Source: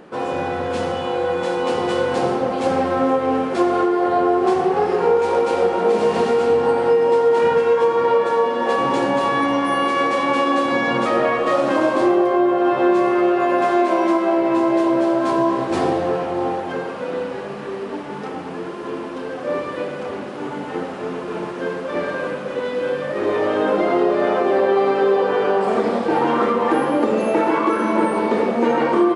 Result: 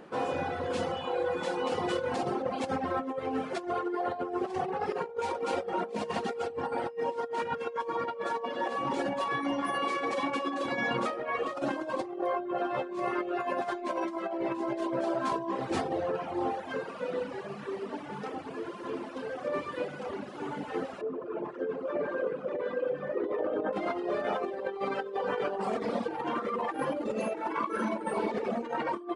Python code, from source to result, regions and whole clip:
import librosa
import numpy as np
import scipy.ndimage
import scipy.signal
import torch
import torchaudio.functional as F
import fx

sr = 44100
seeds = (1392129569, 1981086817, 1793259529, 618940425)

y = fx.chain(x, sr, fx.envelope_sharpen(power=1.5),
    fx.echo_single(ms=591, db=-4.0), at=(21.01, 23.73))
y = fx.hum_notches(y, sr, base_hz=60, count=7)
y = fx.dereverb_blind(y, sr, rt60_s=1.6)
y = fx.over_compress(y, sr, threshold_db=-23.0, ratio=-0.5)
y = F.gain(torch.from_numpy(y), -8.0).numpy()